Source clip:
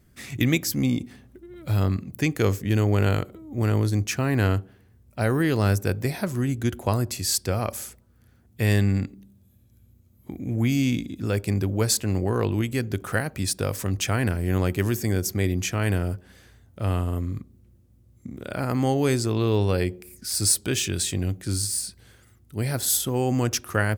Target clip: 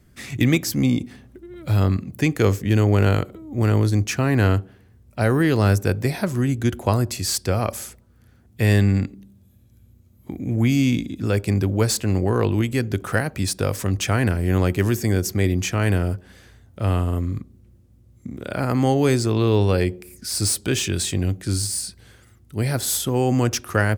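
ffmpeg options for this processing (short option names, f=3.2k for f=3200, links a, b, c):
-filter_complex "[0:a]highshelf=f=12k:g=-6.5,acrossover=split=520|1400[a][b][c];[c]asoftclip=type=tanh:threshold=-21dB[d];[a][b][d]amix=inputs=3:normalize=0,volume=4dB"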